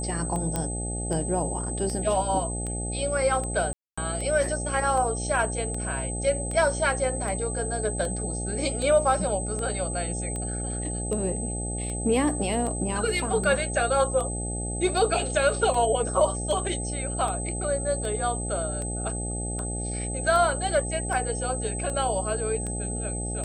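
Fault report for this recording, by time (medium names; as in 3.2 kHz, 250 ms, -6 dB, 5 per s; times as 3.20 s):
buzz 60 Hz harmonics 14 -32 dBFS
tick 78 rpm -21 dBFS
whine 8.2 kHz -33 dBFS
0.56 s: pop -13 dBFS
3.73–3.98 s: dropout 245 ms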